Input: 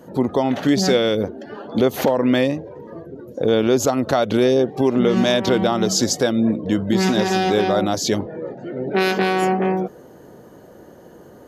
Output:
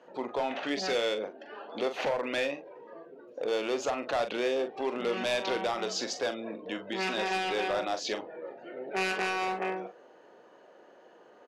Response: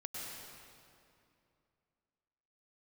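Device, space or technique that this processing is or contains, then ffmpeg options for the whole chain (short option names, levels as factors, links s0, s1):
megaphone: -filter_complex "[0:a]highpass=560,lowpass=3900,equalizer=f=2600:t=o:w=0.3:g=8,asoftclip=type=hard:threshold=0.133,lowpass=11000,asplit=2[s0][s1];[s1]adelay=42,volume=0.355[s2];[s0][s2]amix=inputs=2:normalize=0,volume=0.447"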